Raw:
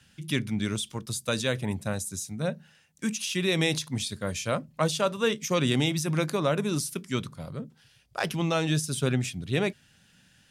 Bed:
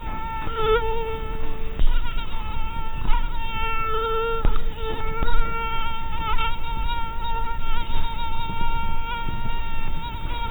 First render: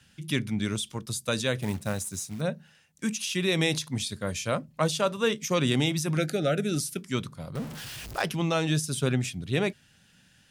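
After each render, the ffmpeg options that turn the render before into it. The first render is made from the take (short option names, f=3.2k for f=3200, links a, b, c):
-filter_complex "[0:a]asettb=1/sr,asplit=3[a][b][c];[a]atrim=end=1.614[d];[b]atrim=start=1.61:end=2.41,asetpts=PTS-STARTPTS,afade=t=in:d=0.004:c=qsin,afade=t=out:st=0.796:d=0.004:c=qsin,acrusher=bits=4:mode=log:mix=0:aa=0.000001[e];[c]atrim=start=2.406[f];[d][e]acrossfade=d=0.004:c1=hsin:c2=qsin[g];[g][f]acrossfade=d=0.004:c1=qsin:c2=hsin,asettb=1/sr,asplit=3[h][i][j];[h]atrim=end=6.174[k];[i]atrim=start=6.17:end=6.98,asetpts=PTS-STARTPTS,afade=t=in:d=0.004:c=qsin,afade=t=out:st=0.806:d=0.004:c=qsin,asuperstop=centerf=1000:order=20:qfactor=2.3[l];[j]atrim=start=6.976[m];[k][l]acrossfade=d=0.004:c1=hsin:c2=qsin[n];[n][m]acrossfade=d=0.004:c1=qsin:c2=hsin,asettb=1/sr,asplit=3[o][p][q];[o]atrim=end=7.554[r];[p]atrim=start=7.55:end=8.22,asetpts=PTS-STARTPTS,afade=t=in:d=0.004:c=qsin,afade=t=out:st=0.666:d=0.004:c=qsin,aeval=exprs='val(0)+0.5*0.0188*sgn(val(0))':c=same[s];[q]atrim=start=8.216[t];[r][s]acrossfade=d=0.004:c1=hsin:c2=qsin[u];[u][t]acrossfade=d=0.004:c1=qsin:c2=hsin"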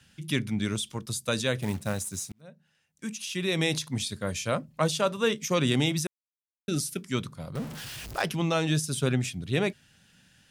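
-filter_complex "[0:a]asplit=4[a][b][c][d];[a]atrim=end=2.32,asetpts=PTS-STARTPTS,afade=t=out:st=2.316:d=0.004:c=hsin[e];[b]atrim=start=2.32:end=6.07,asetpts=PTS-STARTPTS,afade=t=in:d=1.52,afade=t=out:st=3.746:d=0.004:c=hsin[f];[c]atrim=start=6.07:end=6.68,asetpts=PTS-STARTPTS,volume=0[g];[d]atrim=start=6.68,asetpts=PTS-STARTPTS,afade=t=in:d=0.004:c=hsin[h];[e][f][g][h]concat=n=4:v=0:a=1"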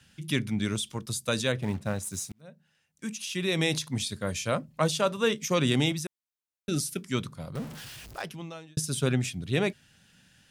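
-filter_complex "[0:a]asettb=1/sr,asplit=3[a][b][c];[a]atrim=end=1.524[d];[b]atrim=start=1.52:end=2.03,asetpts=PTS-STARTPTS,afade=t=in:d=0.004:c=qsin,afade=t=out:st=0.506:d=0.004:c=qsin,lowpass=f=2.6k:p=1[e];[c]atrim=start=2.026[f];[d][e]acrossfade=d=0.004:c1=hsin:c2=qsin[g];[g][f]acrossfade=d=0.004:c1=qsin:c2=hsin,asettb=1/sr,asplit=3[h][i][j];[h]atrim=end=5.924[k];[i]atrim=start=5.92:end=6.69,asetpts=PTS-STARTPTS,afade=t=in:d=0.004:c=qsin,afade=t=out:st=0.766:d=0.004:c=qsin,acompressor=threshold=-33dB:ratio=2:attack=3.2:release=140:knee=1:detection=peak[l];[j]atrim=start=6.686[m];[k][l]acrossfade=d=0.004:c1=hsin:c2=qsin[n];[n][m]acrossfade=d=0.004:c1=qsin:c2=hsin,asplit=2[o][p];[o]atrim=end=8.77,asetpts=PTS-STARTPTS,afade=t=out:st=7.39:d=1.38[q];[p]atrim=start=8.77,asetpts=PTS-STARTPTS,afade=t=in:d=0.004:c=hsin[r];[q][r]concat=n=2:v=0:a=1"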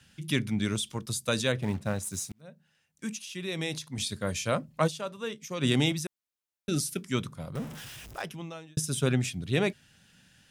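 -filter_complex "[0:a]asettb=1/sr,asplit=3[a][b][c];[a]atrim=end=7.074[d];[b]atrim=start=7.07:end=9.08,asetpts=PTS-STARTPTS,afade=t=in:d=0.004:c=qsin,afade=t=out:st=2.006:d=0.004:c=qsin,equalizer=f=4.4k:w=7.7:g=-7.5[e];[c]atrim=start=9.076[f];[d][e]acrossfade=d=0.004:c1=hsin:c2=qsin[g];[g][f]acrossfade=d=0.004:c1=qsin:c2=hsin,asplit=5[h][i][j][k][l];[h]atrim=end=3.192[m];[i]atrim=start=3.188:end=3.982,asetpts=PTS-STARTPTS,volume=-6.5dB[n];[j]atrim=start=3.978:end=5.05,asetpts=PTS-STARTPTS,afade=t=out:st=0.892:d=0.18:c=exp:silence=0.316228[o];[k]atrim=start=5.05:end=5.46,asetpts=PTS-STARTPTS,volume=-10dB[p];[l]atrim=start=5.46,asetpts=PTS-STARTPTS,afade=t=in:d=0.18:c=exp:silence=0.316228[q];[m][n]acrossfade=d=0.004:c1=hsin:c2=hsin[r];[o][p][q]concat=n=3:v=0:a=1[s];[r][s]acrossfade=d=0.004:c1=hsin:c2=hsin"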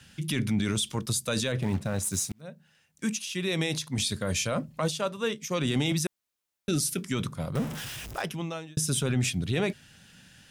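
-af "acontrast=54,alimiter=limit=-18.5dB:level=0:latency=1:release=19"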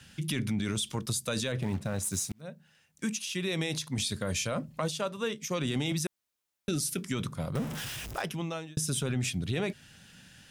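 -af "acompressor=threshold=-30dB:ratio=2"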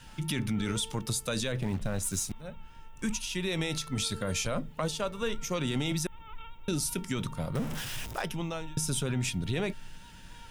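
-filter_complex "[1:a]volume=-23dB[a];[0:a][a]amix=inputs=2:normalize=0"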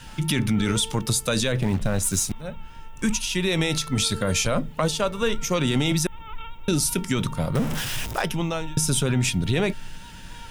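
-af "volume=8.5dB"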